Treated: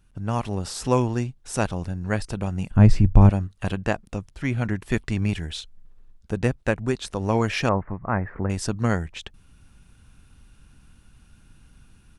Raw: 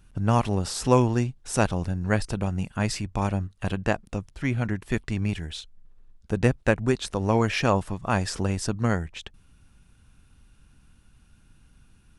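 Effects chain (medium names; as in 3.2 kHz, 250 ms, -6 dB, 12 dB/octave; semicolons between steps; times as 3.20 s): level rider gain up to 9 dB; 2.71–3.30 s: tilt EQ -4 dB/octave; 7.69–8.50 s: Chebyshev low-pass 2.1 kHz, order 5; trim -5 dB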